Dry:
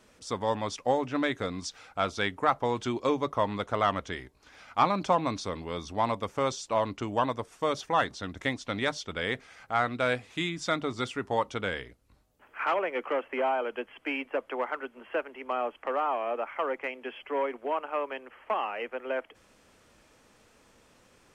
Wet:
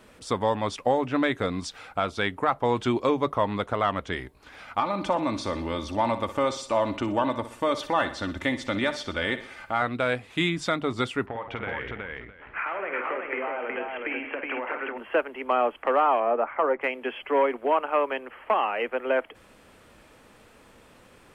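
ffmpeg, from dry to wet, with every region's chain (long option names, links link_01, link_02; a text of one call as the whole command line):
ffmpeg -i in.wav -filter_complex "[0:a]asettb=1/sr,asplit=3[link_01][link_02][link_03];[link_01]atrim=end=4.804[link_04];[link_02]atrim=start=4.8:end=9.82,asetpts=PTS-STARTPTS,afade=type=in:duration=0.004:curve=qsin,afade=type=out:start_time=5.016:duration=0.004:curve=qsin,aecho=1:1:3.4:0.51,atrim=end_sample=221382,acompressor=threshold=-36dB:ratio=1.5:attack=3.2:release=140:knee=1:detection=peak,aecho=1:1:61|122|183|244|305:0.237|0.111|0.0524|0.0246|0.0116,atrim=end_sample=221382[link_05];[link_03]atrim=start=9.816[link_06];[link_04][link_05]acrossfade=duration=0.004:curve1=hsin:curve2=qsin[link_07];[link_07][link_06]acrossfade=duration=0.004:curve1=qsin:curve2=hsin,asettb=1/sr,asplit=3[link_08][link_09][link_10];[link_08]atrim=end=11.264[link_11];[link_09]atrim=start=11.26:end=14.98,asetpts=PTS-STARTPTS,afade=type=in:duration=0.004:curve=qsin,afade=type=out:start_time=3.716:duration=0.004:curve=qsin,acompressor=threshold=-37dB:ratio=20:attack=3.2:release=140:knee=1:detection=peak,lowpass=frequency=2200:width_type=q:width=1.9,aecho=1:1:51|176|298|369|660:0.447|0.266|0.106|0.708|0.141,atrim=end_sample=164052[link_12];[link_10]atrim=start=14.976[link_13];[link_11][link_12]acrossfade=duration=0.004:curve1=hsin:curve2=qsin[link_14];[link_14][link_13]acrossfade=duration=0.004:curve1=qsin:curve2=hsin,asettb=1/sr,asplit=3[link_15][link_16][link_17];[link_15]atrim=end=16.204[link_18];[link_16]atrim=start=16.2:end=16.81,asetpts=PTS-STARTPTS,afade=type=in:duration=0.004:curve=qsin,afade=type=out:start_time=0.606:duration=0.004:curve=qsin,lowpass=1600,asplit=2[link_19][link_20];[link_20]adelay=13,volume=-13dB[link_21];[link_19][link_21]amix=inputs=2:normalize=0,atrim=end_sample=26901[link_22];[link_17]atrim=start=16.806[link_23];[link_18][link_22]acrossfade=duration=0.004:curve1=hsin:curve2=qsin[link_24];[link_24][link_23]acrossfade=duration=0.004:curve1=qsin:curve2=hsin,alimiter=limit=-19.5dB:level=0:latency=1:release=375,equalizer=frequency=6000:width_type=o:width=0.81:gain=-8.5,volume=7.5dB" out.wav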